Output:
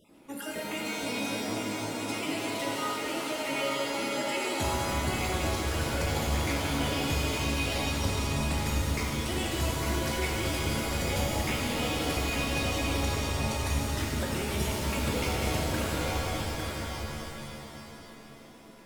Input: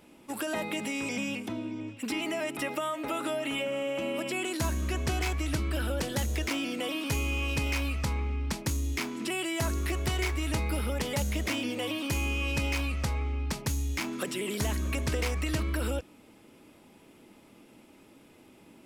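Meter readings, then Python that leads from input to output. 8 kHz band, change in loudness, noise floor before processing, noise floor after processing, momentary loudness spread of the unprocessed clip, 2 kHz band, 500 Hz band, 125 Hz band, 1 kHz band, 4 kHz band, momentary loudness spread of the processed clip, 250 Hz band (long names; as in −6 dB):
+3.0 dB, +1.0 dB, −57 dBFS, −48 dBFS, 3 LU, +1.5 dB, +2.0 dB, +0.5 dB, +5.0 dB, +3.5 dB, 7 LU, +0.5 dB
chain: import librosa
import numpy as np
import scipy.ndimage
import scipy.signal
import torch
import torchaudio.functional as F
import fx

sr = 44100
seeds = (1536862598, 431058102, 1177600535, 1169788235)

y = fx.spec_dropout(x, sr, seeds[0], share_pct=37)
y = y + 10.0 ** (-6.0 / 20.0) * np.pad(y, (int(854 * sr / 1000.0), 0))[:len(y)]
y = fx.rev_shimmer(y, sr, seeds[1], rt60_s=3.2, semitones=7, shimmer_db=-2, drr_db=-2.5)
y = y * librosa.db_to_amplitude(-3.5)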